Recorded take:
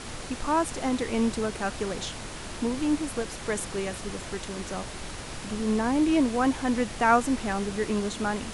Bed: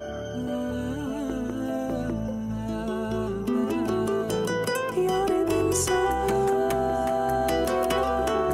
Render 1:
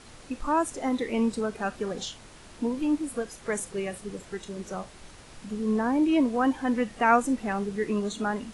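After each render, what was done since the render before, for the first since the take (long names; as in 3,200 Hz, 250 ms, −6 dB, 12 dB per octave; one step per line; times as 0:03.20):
noise reduction from a noise print 11 dB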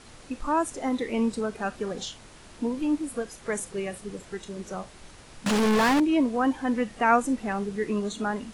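0:05.46–0:06.00: mid-hump overdrive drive 38 dB, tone 5,100 Hz, clips at −15.5 dBFS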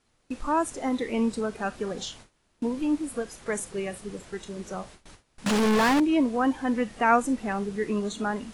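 noise gate with hold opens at −35 dBFS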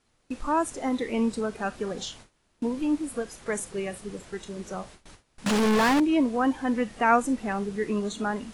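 no processing that can be heard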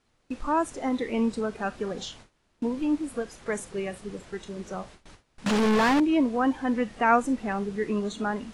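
high-shelf EQ 9,200 Hz −11.5 dB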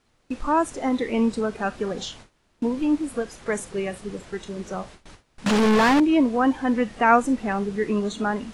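level +4 dB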